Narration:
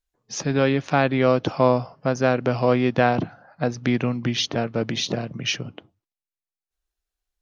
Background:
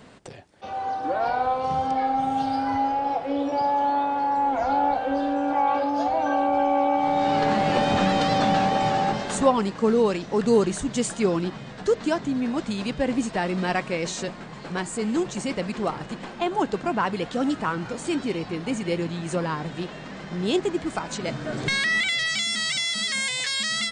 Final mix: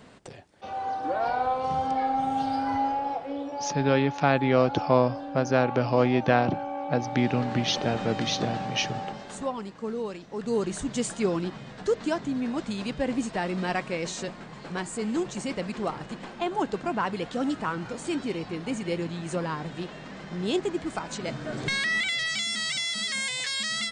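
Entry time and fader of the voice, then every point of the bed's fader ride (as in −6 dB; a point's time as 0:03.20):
3.30 s, −3.0 dB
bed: 0:02.88 −2.5 dB
0:03.80 −12 dB
0:10.31 −12 dB
0:10.80 −3.5 dB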